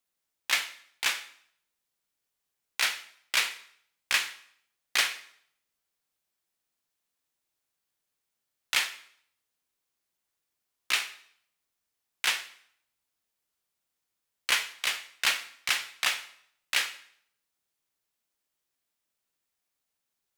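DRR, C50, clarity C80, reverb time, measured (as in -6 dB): 10.0 dB, 14.0 dB, 17.0 dB, 0.65 s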